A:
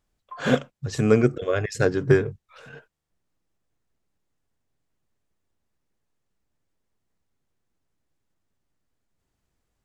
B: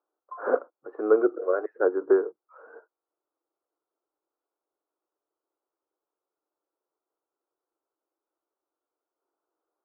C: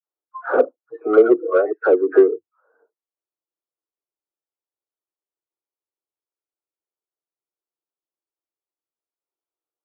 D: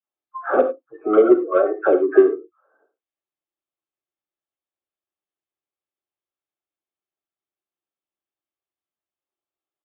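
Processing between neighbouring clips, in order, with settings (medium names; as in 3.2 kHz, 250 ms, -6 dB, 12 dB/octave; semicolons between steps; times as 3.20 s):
Chebyshev band-pass 320–1400 Hz, order 4
spectral noise reduction 23 dB; phase dispersion lows, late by 77 ms, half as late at 1 kHz; in parallel at -9 dB: saturation -23 dBFS, distortion -8 dB; on the sum: trim +7 dB
comb of notches 480 Hz; resampled via 8 kHz; gated-style reverb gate 120 ms flat, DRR 9 dB; trim +2 dB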